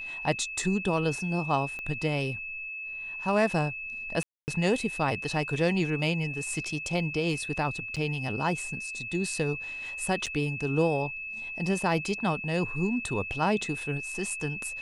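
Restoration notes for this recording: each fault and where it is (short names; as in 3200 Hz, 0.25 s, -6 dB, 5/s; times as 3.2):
tone 2600 Hz -35 dBFS
1.79 pop -25 dBFS
4.23–4.48 gap 0.249 s
7.96–7.97 gap 6.9 ms
10.26–10.27 gap 5.7 ms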